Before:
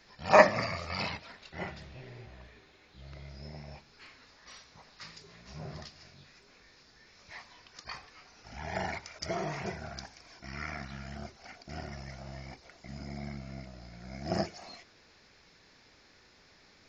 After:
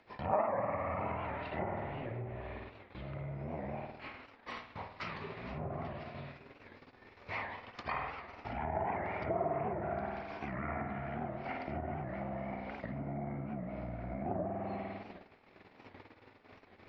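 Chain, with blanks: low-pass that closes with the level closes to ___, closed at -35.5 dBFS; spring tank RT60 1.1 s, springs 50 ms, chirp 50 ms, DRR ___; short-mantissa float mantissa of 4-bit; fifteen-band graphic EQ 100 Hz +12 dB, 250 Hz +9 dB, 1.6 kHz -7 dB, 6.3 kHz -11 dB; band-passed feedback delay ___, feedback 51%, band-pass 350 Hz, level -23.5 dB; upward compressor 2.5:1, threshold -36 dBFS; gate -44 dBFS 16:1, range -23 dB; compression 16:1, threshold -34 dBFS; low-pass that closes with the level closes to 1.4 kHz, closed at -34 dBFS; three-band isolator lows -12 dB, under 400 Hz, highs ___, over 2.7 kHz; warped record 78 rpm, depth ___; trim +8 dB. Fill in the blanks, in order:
2.7 kHz, 0.5 dB, 390 ms, -18 dB, 160 cents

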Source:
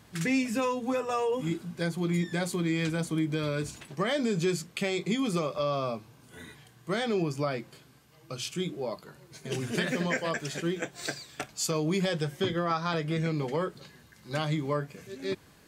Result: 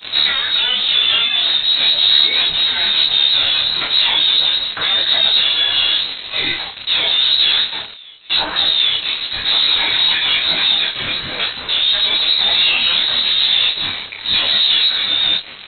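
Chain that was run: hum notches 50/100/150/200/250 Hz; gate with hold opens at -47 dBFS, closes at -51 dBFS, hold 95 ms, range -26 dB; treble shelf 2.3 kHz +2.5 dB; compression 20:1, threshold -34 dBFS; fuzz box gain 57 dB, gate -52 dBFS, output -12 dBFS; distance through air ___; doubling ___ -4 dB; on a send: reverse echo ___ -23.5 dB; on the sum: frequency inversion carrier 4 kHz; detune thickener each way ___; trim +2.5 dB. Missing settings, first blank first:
230 m, 29 ms, 816 ms, 33 cents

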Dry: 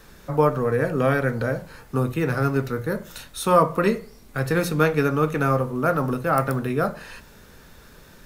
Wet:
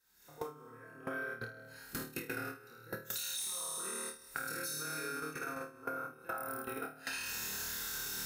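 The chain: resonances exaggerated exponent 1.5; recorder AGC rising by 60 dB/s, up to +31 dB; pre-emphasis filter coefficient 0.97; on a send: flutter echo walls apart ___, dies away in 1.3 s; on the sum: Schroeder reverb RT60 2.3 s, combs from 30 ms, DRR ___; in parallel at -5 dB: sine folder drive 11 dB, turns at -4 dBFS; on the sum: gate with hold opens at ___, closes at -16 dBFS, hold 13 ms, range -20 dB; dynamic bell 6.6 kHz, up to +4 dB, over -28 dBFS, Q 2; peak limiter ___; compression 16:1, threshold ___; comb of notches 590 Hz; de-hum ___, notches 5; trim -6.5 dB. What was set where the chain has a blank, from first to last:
4.5 m, 7.5 dB, -13 dBFS, -10.5 dBFS, -29 dBFS, 149.3 Hz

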